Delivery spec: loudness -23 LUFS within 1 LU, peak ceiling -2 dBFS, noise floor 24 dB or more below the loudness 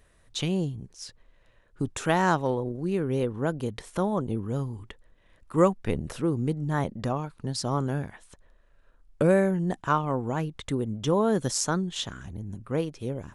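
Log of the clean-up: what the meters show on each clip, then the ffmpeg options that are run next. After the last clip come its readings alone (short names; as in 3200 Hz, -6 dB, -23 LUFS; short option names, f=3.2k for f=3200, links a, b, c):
loudness -28.0 LUFS; peak -7.5 dBFS; loudness target -23.0 LUFS
-> -af "volume=5dB"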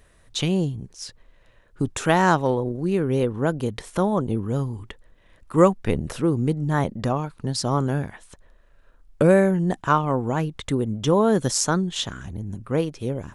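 loudness -23.0 LUFS; peak -2.5 dBFS; noise floor -56 dBFS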